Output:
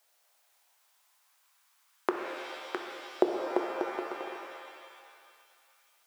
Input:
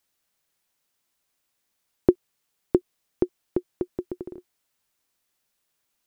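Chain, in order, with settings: LFO high-pass saw up 0.34 Hz 620–1500 Hz; pitch-shifted reverb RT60 1.9 s, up +7 st, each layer -2 dB, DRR 3.5 dB; trim +5 dB

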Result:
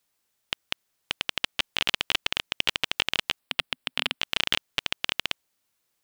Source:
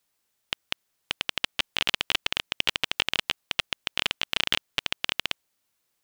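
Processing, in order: 3.39–4.21 s: graphic EQ with 31 bands 160 Hz -4 dB, 250 Hz +5 dB, 6.3 kHz -11 dB

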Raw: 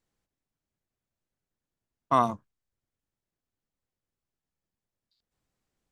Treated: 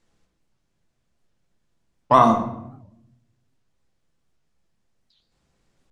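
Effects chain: in parallel at +2.5 dB: peak limiter -20 dBFS, peak gain reduction 10 dB; on the sum: low-pass 8.1 kHz; simulated room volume 230 m³, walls mixed, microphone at 0.8 m; warped record 78 rpm, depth 250 cents; trim +3.5 dB

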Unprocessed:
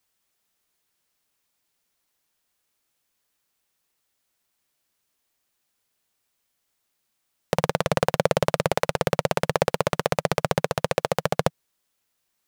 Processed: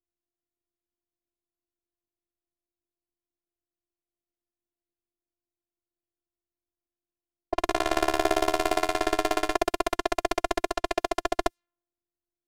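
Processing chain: level-controlled noise filter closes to 320 Hz, open at -21 dBFS; robot voice 346 Hz; 7.61–9.56 s: flutter echo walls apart 12 m, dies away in 0.83 s

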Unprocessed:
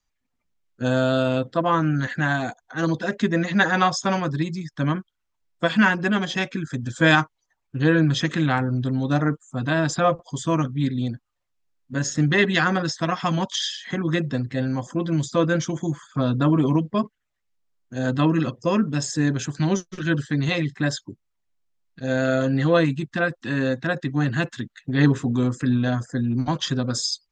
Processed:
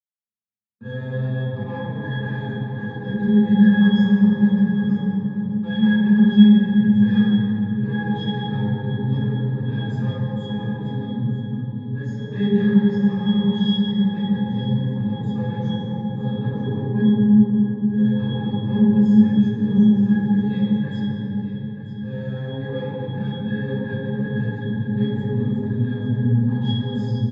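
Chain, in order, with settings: treble shelf 6.1 kHz +7.5 dB; comb 5.7 ms, depth 49%; waveshaping leveller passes 5; pitch-class resonator G#, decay 0.25 s; delay 934 ms -12 dB; reverberation RT60 3.5 s, pre-delay 3 ms, DRR -7 dB; trim -18 dB

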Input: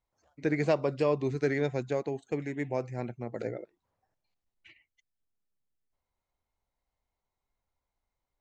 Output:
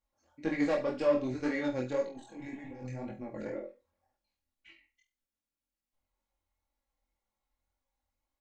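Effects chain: valve stage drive 21 dB, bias 0.3; 2.06–3.46 s: compressor with a negative ratio -41 dBFS, ratio -1; comb 3.6 ms, depth 61%; flutter echo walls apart 4.1 m, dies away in 0.29 s; 2.17–2.83 s: spectral replace 600–1400 Hz before; chorus 1.9 Hz, delay 18.5 ms, depth 5 ms

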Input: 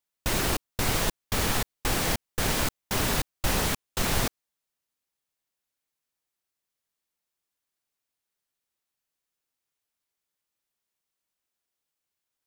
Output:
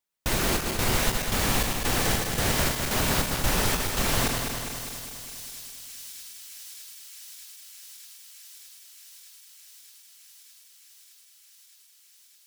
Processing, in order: backward echo that repeats 102 ms, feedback 78%, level -5 dB; feedback echo behind a high-pass 615 ms, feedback 84%, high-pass 4.4 kHz, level -12 dB

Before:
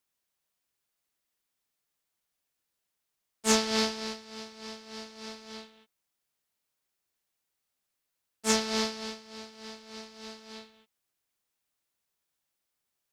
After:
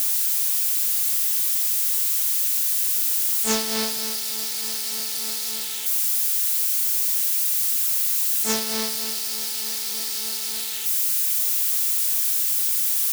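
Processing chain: zero-crossing glitches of -18 dBFS

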